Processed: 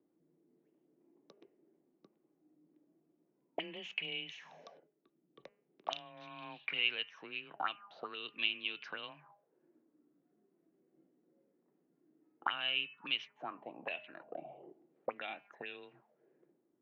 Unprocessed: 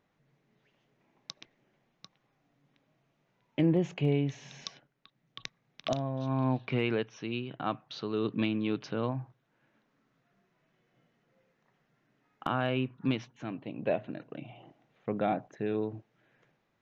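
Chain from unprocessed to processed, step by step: de-hum 199.3 Hz, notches 15; frequency shift +19 Hz; auto-wah 320–2900 Hz, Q 5, up, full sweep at -29 dBFS; gain +9 dB

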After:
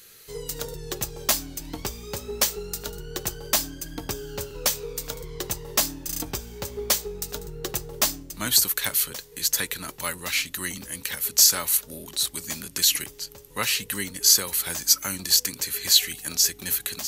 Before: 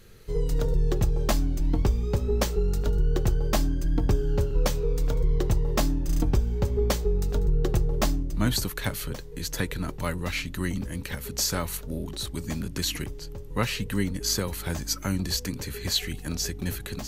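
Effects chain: tilt +4 dB/oct

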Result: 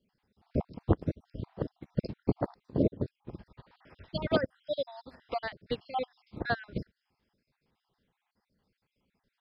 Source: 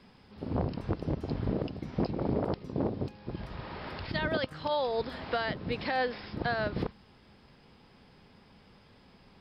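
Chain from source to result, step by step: random spectral dropouts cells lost 50%; upward expander 2.5:1, over -44 dBFS; gain +8 dB

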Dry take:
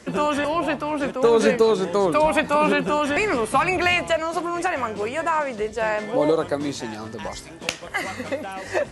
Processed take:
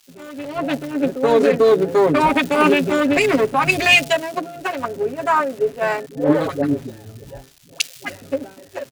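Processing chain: Wiener smoothing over 41 samples; gate with hold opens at -30 dBFS; low shelf 79 Hz -9 dB; comb 7.3 ms, depth 94%; limiter -13 dBFS, peak gain reduction 9.5 dB; AGC gain up to 14 dB; 6.06–8.22 dispersion highs, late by 0.116 s, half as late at 470 Hz; crackle 410/s -21 dBFS; three-band expander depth 100%; gain -5.5 dB

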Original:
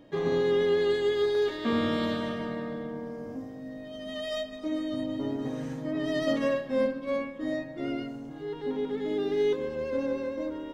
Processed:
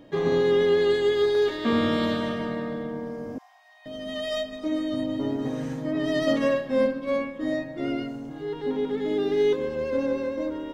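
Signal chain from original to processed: 3.38–3.86 rippled Chebyshev high-pass 690 Hz, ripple 6 dB; gain +4 dB

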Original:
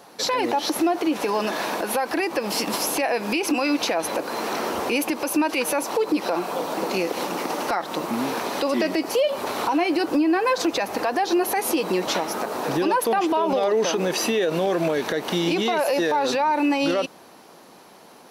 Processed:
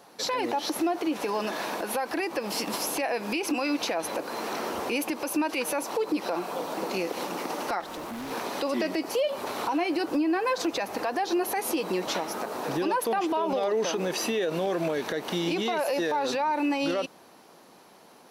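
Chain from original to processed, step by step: 7.8–8.31 overloaded stage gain 28.5 dB; gain -5.5 dB

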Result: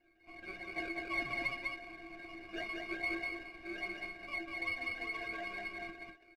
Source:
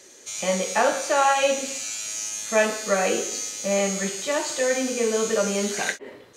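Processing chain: decimation with a swept rate 36×, swing 60% 2.5 Hz; ladder low-pass 2400 Hz, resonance 85%; metallic resonator 330 Hz, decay 0.25 s, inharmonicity 0.03; echo 0.197 s -3 dB; running maximum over 3 samples; gain +4.5 dB

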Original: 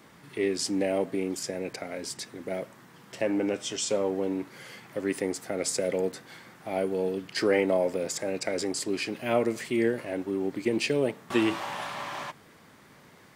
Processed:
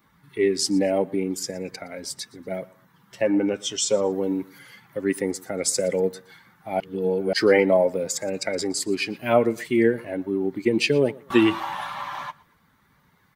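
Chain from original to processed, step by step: per-bin expansion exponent 1.5; 4.12–4.59 high shelf 4700 Hz +9 dB; feedback echo 0.118 s, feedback 28%, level -23 dB; 6.8–7.33 reverse; gain +8.5 dB

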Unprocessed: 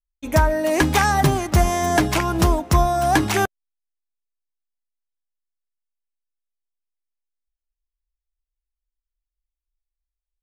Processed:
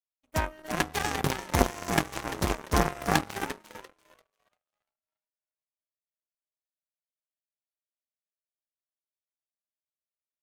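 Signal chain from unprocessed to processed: frequency-shifting echo 0.344 s, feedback 57%, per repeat +110 Hz, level -4 dB; whine 620 Hz -39 dBFS; power-law curve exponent 3

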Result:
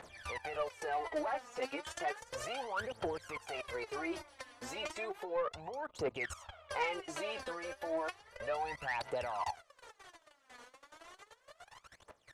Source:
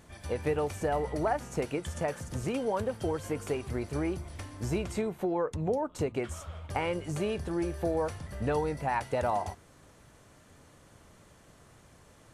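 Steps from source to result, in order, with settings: level quantiser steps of 19 dB; phaser 0.33 Hz, delay 4.2 ms, feedback 77%; three-band isolator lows -22 dB, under 510 Hz, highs -12 dB, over 5600 Hz; soft clip -33 dBFS, distortion -17 dB; gain +5.5 dB

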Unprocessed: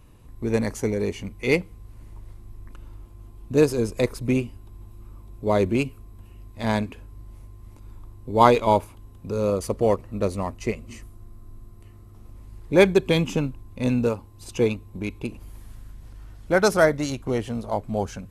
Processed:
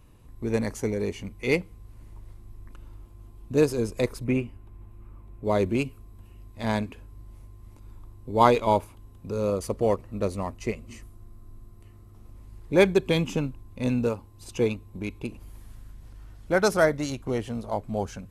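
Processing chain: 4.24–5.45 resonant high shelf 3100 Hz -7.5 dB, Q 1.5; gain -3 dB

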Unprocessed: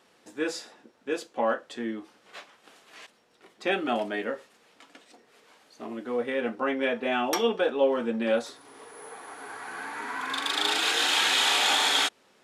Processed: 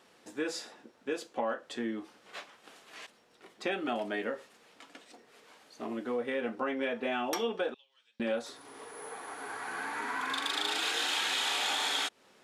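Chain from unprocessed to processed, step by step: compressor 3:1, threshold -31 dBFS, peak gain reduction 10 dB; 7.74–8.2 ladder band-pass 4900 Hz, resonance 40%

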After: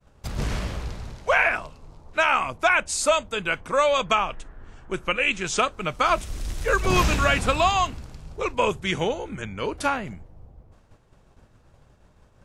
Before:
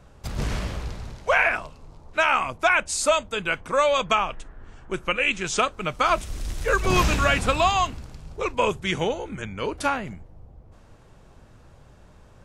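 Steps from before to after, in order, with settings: expander -44 dBFS

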